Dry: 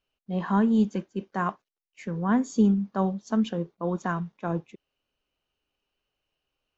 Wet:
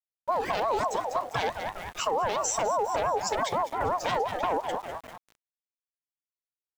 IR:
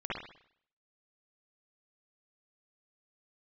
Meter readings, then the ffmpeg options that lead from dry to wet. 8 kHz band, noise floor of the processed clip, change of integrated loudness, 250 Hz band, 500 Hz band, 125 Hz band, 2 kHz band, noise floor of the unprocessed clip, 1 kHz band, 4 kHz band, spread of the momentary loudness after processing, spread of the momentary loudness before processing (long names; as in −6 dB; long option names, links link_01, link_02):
can't be measured, below −85 dBFS, −2.0 dB, −18.5 dB, +4.0 dB, −12.5 dB, +3.5 dB, below −85 dBFS, +6.5 dB, +10.0 dB, 8 LU, 11 LU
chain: -filter_complex "[0:a]afftfilt=real='re*pow(10,18/40*sin(2*PI*(1.2*log(max(b,1)*sr/1024/100)/log(2)-(2.4)*(pts-256)/sr)))':imag='im*pow(10,18/40*sin(2*PI*(1.2*log(max(b,1)*sr/1024/100)/log(2)-(2.4)*(pts-256)/sr)))':win_size=1024:overlap=0.75,highpass=51,aresample=16000,aeval=exprs='0.473*sin(PI/2*5.01*val(0)/0.473)':channel_layout=same,aresample=44100,highshelf=frequency=6000:gain=3,asplit=2[link_01][link_02];[link_02]asplit=4[link_03][link_04][link_05][link_06];[link_03]adelay=199,afreqshift=-50,volume=-14dB[link_07];[link_04]adelay=398,afreqshift=-100,volume=-22dB[link_08];[link_05]adelay=597,afreqshift=-150,volume=-29.9dB[link_09];[link_06]adelay=796,afreqshift=-200,volume=-37.9dB[link_10];[link_07][link_08][link_09][link_10]amix=inputs=4:normalize=0[link_11];[link_01][link_11]amix=inputs=2:normalize=0,acrossover=split=190|3000[link_12][link_13][link_14];[link_13]acompressor=threshold=-33dB:ratio=2.5[link_15];[link_12][link_15][link_14]amix=inputs=3:normalize=0,alimiter=limit=-14dB:level=0:latency=1:release=138,acompressor=threshold=-21dB:ratio=8,aeval=exprs='val(0)*gte(abs(val(0)),0.01)':channel_layout=same,equalizer=frequency=4200:width=1.8:gain=-4.5,aeval=exprs='val(0)*sin(2*PI*760*n/s+760*0.2/5.8*sin(2*PI*5.8*n/s))':channel_layout=same"